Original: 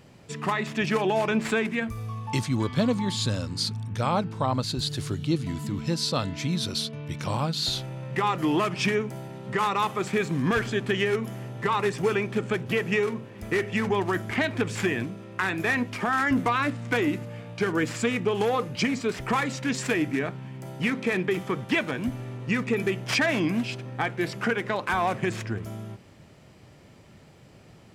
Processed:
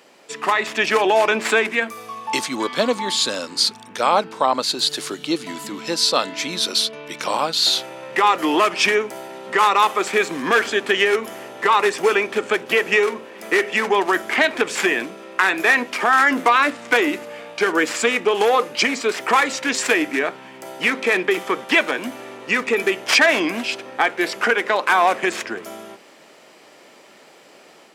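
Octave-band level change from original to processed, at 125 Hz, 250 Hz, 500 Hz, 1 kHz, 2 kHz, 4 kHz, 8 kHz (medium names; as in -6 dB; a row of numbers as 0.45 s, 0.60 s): -14.0 dB, +0.5 dB, +7.5 dB, +10.0 dB, +10.5 dB, +10.5 dB, +10.5 dB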